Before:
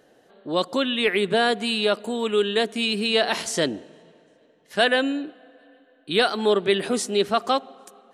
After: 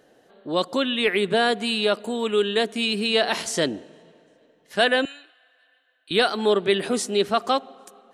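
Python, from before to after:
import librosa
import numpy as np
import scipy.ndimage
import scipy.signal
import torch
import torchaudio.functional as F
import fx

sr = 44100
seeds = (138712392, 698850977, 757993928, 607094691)

y = fx.highpass(x, sr, hz=1500.0, slope=12, at=(5.05, 6.11))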